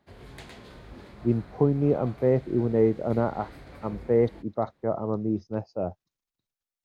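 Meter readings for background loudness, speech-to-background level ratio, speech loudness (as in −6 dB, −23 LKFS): −46.5 LKFS, 19.5 dB, −27.0 LKFS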